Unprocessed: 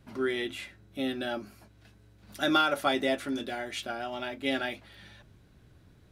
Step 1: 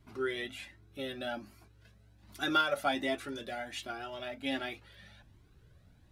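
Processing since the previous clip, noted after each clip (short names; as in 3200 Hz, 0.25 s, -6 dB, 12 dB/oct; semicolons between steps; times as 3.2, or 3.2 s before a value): cascading flanger rising 1.3 Hz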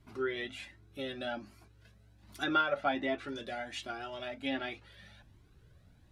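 treble ducked by the level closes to 2700 Hz, closed at -29 dBFS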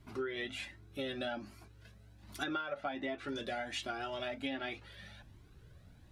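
compressor 16:1, threshold -37 dBFS, peak gain reduction 14.5 dB; gain +3 dB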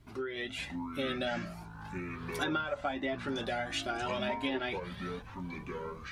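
echoes that change speed 0.471 s, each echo -7 st, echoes 3, each echo -6 dB; AGC gain up to 4 dB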